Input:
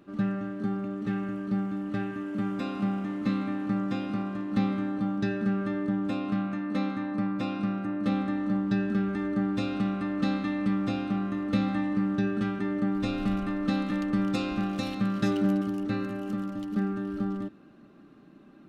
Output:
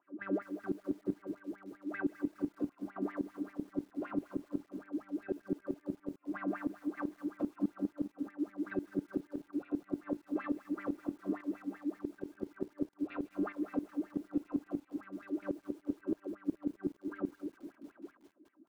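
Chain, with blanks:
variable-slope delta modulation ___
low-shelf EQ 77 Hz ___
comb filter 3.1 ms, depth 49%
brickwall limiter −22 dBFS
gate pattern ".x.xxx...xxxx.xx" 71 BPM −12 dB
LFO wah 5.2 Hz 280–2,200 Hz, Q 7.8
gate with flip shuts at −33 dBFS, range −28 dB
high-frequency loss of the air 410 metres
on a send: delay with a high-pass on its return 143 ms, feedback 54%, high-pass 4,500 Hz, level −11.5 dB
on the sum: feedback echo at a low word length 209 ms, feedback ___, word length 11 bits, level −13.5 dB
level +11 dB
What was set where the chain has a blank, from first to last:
32 kbit/s, +4 dB, 55%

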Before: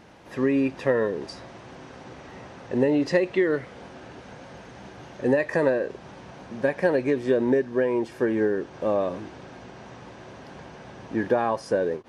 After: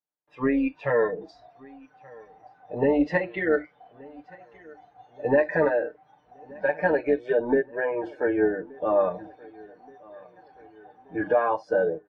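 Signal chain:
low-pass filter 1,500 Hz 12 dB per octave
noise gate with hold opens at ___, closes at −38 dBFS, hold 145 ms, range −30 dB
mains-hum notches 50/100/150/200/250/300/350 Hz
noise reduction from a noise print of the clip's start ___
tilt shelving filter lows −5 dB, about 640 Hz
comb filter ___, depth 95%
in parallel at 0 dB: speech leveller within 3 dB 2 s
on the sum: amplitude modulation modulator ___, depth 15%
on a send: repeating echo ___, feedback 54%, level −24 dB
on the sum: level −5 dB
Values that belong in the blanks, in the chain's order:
−37 dBFS, 22 dB, 6.7 ms, 240 Hz, 1,176 ms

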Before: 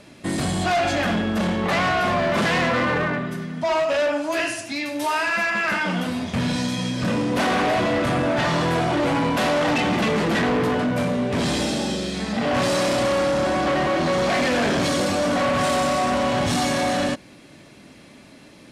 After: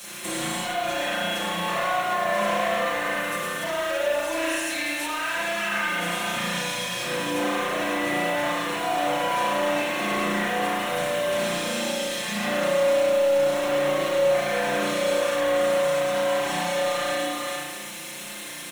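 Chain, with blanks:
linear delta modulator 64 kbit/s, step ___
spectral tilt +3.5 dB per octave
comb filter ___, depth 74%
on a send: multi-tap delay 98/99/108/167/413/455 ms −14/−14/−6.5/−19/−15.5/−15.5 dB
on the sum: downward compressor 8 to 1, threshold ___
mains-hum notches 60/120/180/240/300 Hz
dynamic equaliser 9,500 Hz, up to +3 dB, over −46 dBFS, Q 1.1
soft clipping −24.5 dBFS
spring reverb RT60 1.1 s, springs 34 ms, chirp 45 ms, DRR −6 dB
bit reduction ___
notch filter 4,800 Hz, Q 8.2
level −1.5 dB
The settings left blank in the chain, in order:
−40.5 dBFS, 5.7 ms, −26 dBFS, 7 bits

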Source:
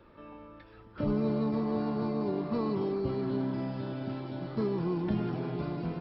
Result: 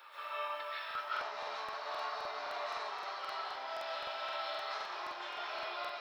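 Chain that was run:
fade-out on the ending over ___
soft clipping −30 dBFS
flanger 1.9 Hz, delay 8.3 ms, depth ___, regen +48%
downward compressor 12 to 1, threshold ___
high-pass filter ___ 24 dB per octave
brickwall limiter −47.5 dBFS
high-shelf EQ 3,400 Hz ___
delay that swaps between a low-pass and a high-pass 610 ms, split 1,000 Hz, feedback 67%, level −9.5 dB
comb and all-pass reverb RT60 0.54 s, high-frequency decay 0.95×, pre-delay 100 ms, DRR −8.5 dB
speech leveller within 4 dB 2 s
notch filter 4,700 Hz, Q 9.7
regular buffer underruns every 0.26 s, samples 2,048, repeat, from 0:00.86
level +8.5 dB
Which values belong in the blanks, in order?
0.60 s, 3.6 ms, −43 dBFS, 830 Hz, +11.5 dB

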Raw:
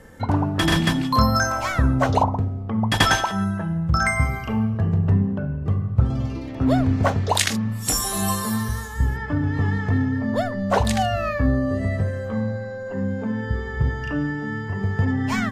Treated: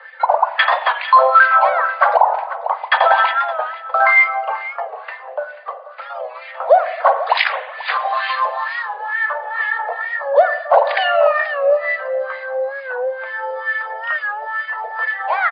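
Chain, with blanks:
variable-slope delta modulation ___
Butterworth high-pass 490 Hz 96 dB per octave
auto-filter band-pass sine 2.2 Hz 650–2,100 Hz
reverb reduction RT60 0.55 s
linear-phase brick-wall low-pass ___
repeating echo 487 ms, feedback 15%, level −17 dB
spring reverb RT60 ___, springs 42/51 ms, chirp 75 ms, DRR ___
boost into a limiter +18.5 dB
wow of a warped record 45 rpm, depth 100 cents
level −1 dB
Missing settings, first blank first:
64 kbit/s, 4,900 Hz, 1 s, 11.5 dB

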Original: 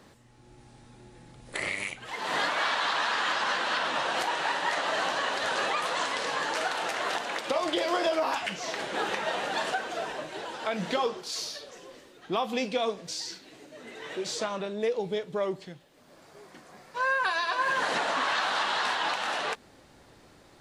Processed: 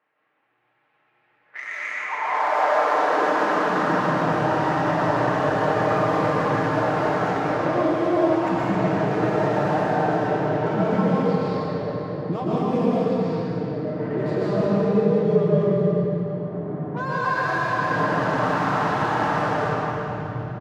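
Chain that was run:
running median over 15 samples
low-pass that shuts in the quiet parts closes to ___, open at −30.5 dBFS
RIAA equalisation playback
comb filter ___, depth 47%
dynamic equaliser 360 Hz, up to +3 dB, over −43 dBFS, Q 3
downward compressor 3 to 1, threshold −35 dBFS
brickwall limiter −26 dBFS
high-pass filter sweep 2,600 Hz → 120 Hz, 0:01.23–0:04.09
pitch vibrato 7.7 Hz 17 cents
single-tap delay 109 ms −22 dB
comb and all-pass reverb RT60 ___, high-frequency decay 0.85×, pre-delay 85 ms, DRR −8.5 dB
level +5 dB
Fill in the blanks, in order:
900 Hz, 6.6 ms, 3.6 s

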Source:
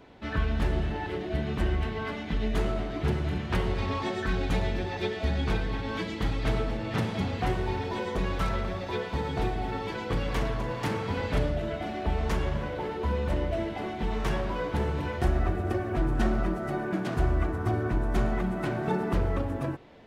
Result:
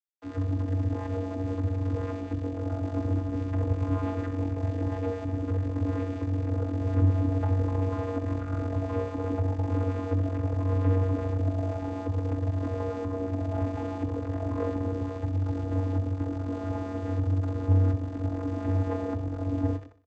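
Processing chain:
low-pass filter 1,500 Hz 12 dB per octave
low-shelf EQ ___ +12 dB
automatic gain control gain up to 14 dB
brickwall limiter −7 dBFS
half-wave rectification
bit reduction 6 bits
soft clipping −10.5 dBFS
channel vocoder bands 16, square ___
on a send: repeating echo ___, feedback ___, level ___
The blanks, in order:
180 Hz, 94.2 Hz, 62 ms, 47%, −15 dB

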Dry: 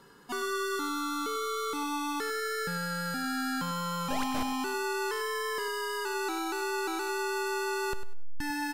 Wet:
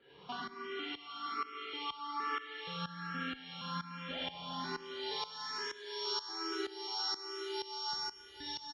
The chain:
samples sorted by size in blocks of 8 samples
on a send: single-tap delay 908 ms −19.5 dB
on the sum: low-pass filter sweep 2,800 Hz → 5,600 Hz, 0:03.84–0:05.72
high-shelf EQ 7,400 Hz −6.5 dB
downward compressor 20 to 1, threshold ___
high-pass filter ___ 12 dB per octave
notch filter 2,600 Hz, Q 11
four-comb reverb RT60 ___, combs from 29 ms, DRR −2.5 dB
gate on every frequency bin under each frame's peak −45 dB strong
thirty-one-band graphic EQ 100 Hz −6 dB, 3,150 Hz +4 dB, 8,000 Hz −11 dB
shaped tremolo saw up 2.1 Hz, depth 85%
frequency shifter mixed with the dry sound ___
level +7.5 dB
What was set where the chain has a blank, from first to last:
−42 dBFS, 73 Hz, 3.9 s, +1.2 Hz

